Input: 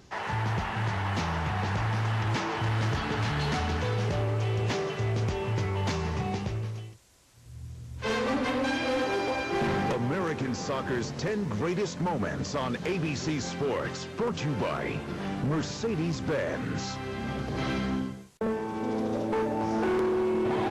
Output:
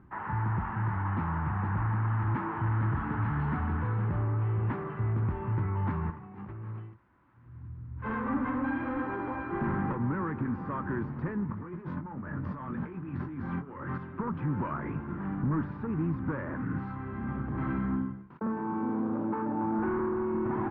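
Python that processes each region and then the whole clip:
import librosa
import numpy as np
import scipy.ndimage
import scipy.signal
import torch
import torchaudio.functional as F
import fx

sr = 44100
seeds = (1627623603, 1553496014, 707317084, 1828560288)

y = fx.chain(x, sr, fx.highpass(hz=200.0, slope=6),
    fx.over_compress(threshold_db=-40.0, ratio=-1.0), at=(6.1, 7.68))
y = fx.chain(y, sr, fx.hum_notches(base_hz=60, count=4),
    fx.over_compress(threshold_db=-36.0, ratio=-1.0),
    fx.doubler(ms=22.0, db=-7.5), at=(11.45, 13.98))
y = fx.chain(y, sr, fx.highpass(hz=140.0, slope=12),
    fx.peak_eq(hz=1900.0, db=-5.0, octaves=0.35),
    fx.env_flatten(amount_pct=50), at=(18.3, 19.79))
y = scipy.signal.sosfilt(scipy.signal.butter(4, 1500.0, 'lowpass', fs=sr, output='sos'), y)
y = fx.band_shelf(y, sr, hz=550.0, db=-11.5, octaves=1.1)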